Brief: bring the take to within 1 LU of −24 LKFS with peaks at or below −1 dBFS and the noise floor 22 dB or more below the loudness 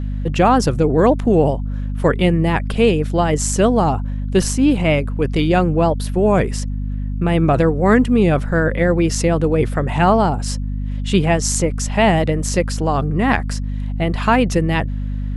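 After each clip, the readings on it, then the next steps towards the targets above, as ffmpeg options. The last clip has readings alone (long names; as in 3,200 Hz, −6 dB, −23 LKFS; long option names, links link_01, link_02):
mains hum 50 Hz; hum harmonics up to 250 Hz; level of the hum −20 dBFS; integrated loudness −17.5 LKFS; sample peak −1.0 dBFS; target loudness −24.0 LKFS
→ -af "bandreject=frequency=50:width_type=h:width=6,bandreject=frequency=100:width_type=h:width=6,bandreject=frequency=150:width_type=h:width=6,bandreject=frequency=200:width_type=h:width=6,bandreject=frequency=250:width_type=h:width=6"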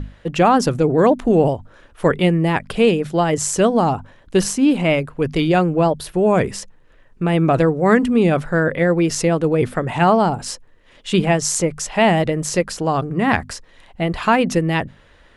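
mains hum none found; integrated loudness −18.0 LKFS; sample peak −1.0 dBFS; target loudness −24.0 LKFS
→ -af "volume=-6dB"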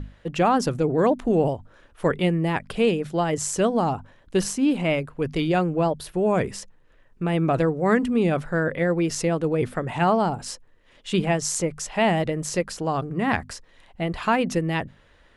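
integrated loudness −24.0 LKFS; sample peak −7.0 dBFS; background noise floor −56 dBFS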